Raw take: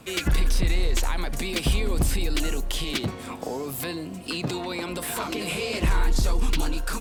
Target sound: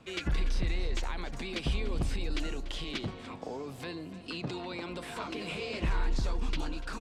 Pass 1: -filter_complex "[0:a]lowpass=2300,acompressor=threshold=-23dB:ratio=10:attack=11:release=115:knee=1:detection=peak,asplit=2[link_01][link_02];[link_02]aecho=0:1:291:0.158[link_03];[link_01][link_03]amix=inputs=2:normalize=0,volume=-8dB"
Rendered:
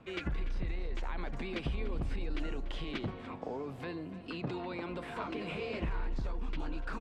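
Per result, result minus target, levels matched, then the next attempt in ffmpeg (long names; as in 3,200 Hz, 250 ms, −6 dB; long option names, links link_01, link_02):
downward compressor: peak gain reduction +7.5 dB; 4,000 Hz band −4.5 dB
-filter_complex "[0:a]lowpass=2300,asplit=2[link_01][link_02];[link_02]aecho=0:1:291:0.158[link_03];[link_01][link_03]amix=inputs=2:normalize=0,volume=-8dB"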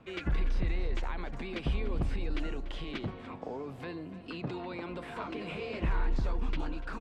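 4,000 Hz band −6.5 dB
-filter_complex "[0:a]lowpass=5000,asplit=2[link_01][link_02];[link_02]aecho=0:1:291:0.158[link_03];[link_01][link_03]amix=inputs=2:normalize=0,volume=-8dB"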